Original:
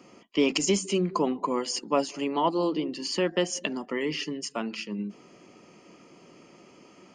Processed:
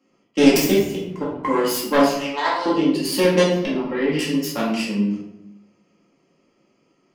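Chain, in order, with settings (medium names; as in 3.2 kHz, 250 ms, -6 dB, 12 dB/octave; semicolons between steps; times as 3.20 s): self-modulated delay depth 0.21 ms; gate -41 dBFS, range -20 dB; 0.64–1.45 s: level held to a coarse grid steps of 23 dB; 2.06–2.66 s: high-pass 840 Hz 12 dB/octave; 3.42–4.19 s: distance through air 310 m; simulated room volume 210 m³, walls mixed, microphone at 2.2 m; trim +2 dB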